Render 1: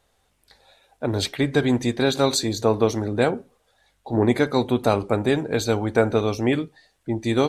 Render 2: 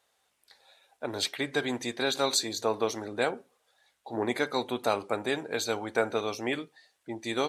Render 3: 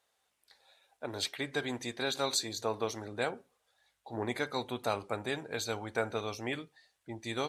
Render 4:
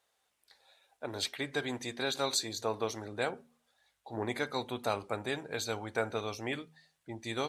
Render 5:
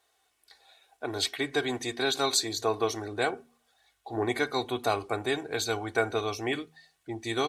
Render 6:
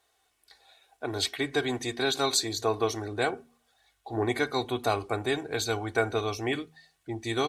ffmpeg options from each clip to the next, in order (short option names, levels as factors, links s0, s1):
-af "highpass=f=780:p=1,volume=0.708"
-af "asubboost=boost=3:cutoff=150,volume=0.596"
-af "bandreject=f=79.07:t=h:w=4,bandreject=f=158.14:t=h:w=4,bandreject=f=237.21:t=h:w=4"
-af "aecho=1:1:2.7:0.57,volume=1.68"
-af "lowshelf=f=160:g=6"